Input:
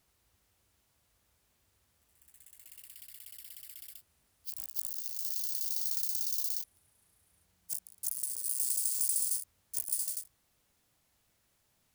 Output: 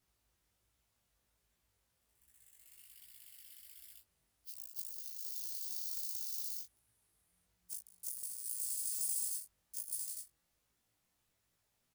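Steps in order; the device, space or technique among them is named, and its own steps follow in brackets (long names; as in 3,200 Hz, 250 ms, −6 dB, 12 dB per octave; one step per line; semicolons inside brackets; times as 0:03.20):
0:08.88–0:09.29: comb filter 3 ms
double-tracked vocal (double-tracking delay 17 ms −4.5 dB; chorus effect 1.3 Hz, delay 17.5 ms, depth 5.7 ms)
level −5 dB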